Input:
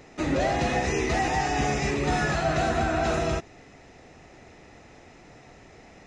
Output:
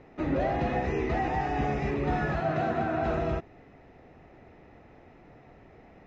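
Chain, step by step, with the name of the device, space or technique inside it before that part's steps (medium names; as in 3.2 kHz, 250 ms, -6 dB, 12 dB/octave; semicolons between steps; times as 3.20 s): phone in a pocket (low-pass 3.3 kHz 12 dB/octave; treble shelf 2 kHz -9.5 dB); 2.40–3.03 s: high-pass 100 Hz 24 dB/octave; trim -2 dB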